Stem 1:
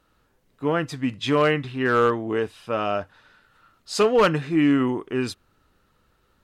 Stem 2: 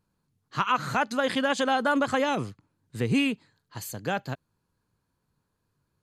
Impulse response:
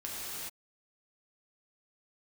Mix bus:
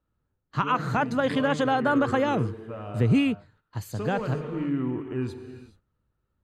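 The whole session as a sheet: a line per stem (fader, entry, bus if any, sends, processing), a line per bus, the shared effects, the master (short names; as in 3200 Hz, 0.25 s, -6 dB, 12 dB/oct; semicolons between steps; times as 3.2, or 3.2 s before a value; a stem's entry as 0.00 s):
-8.0 dB, 0.00 s, send -9.5 dB, low shelf 290 Hz +4.5 dB; notch 5200 Hz, Q 7.5; compressor 1.5:1, threshold -24 dBFS, peak gain reduction 4.5 dB; auto duck -9 dB, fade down 0.20 s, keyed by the second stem
+1.5 dB, 0.00 s, no send, gate -55 dBFS, range -10 dB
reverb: on, pre-delay 3 ms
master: bell 90 Hz +8 dB 1.6 oct; gate -57 dBFS, range -11 dB; high shelf 2500 Hz -10 dB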